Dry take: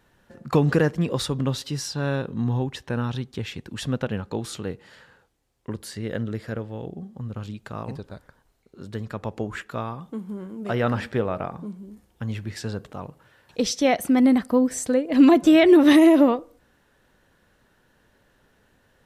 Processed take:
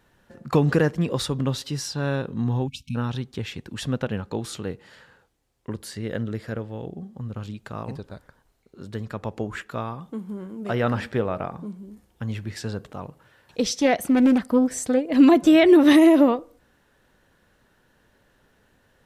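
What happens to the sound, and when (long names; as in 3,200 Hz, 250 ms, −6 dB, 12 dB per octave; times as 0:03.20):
0:02.68–0:02.96: time-frequency box erased 270–2,200 Hz
0:13.64–0:15.01: highs frequency-modulated by the lows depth 0.27 ms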